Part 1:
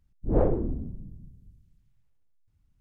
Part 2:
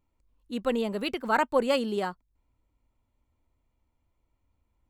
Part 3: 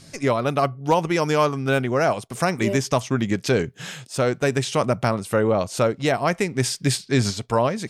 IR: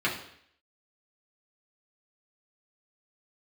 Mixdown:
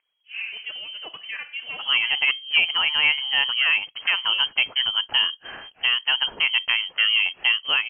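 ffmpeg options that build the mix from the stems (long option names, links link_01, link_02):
-filter_complex "[0:a]highpass=frequency=950:width_type=q:width=1.7,aphaser=in_gain=1:out_gain=1:delay=4.8:decay=0.77:speed=1.2:type=triangular,volume=-0.5dB,asplit=2[link_01][link_02];[link_02]volume=-16.5dB[link_03];[1:a]volume=-4dB,asplit=2[link_04][link_05];[link_05]volume=-21dB[link_06];[2:a]adelay=1650,volume=-0.5dB[link_07];[link_01][link_04]amix=inputs=2:normalize=0,acompressor=threshold=-33dB:ratio=4,volume=0dB[link_08];[3:a]atrim=start_sample=2205[link_09];[link_03][link_06]amix=inputs=2:normalize=0[link_10];[link_10][link_09]afir=irnorm=-1:irlink=0[link_11];[link_07][link_08][link_11]amix=inputs=3:normalize=0,asubboost=boost=2.5:cutoff=58,acrusher=bits=8:mode=log:mix=0:aa=0.000001,lowpass=frequency=2800:width_type=q:width=0.5098,lowpass=frequency=2800:width_type=q:width=0.6013,lowpass=frequency=2800:width_type=q:width=0.9,lowpass=frequency=2800:width_type=q:width=2.563,afreqshift=-3300"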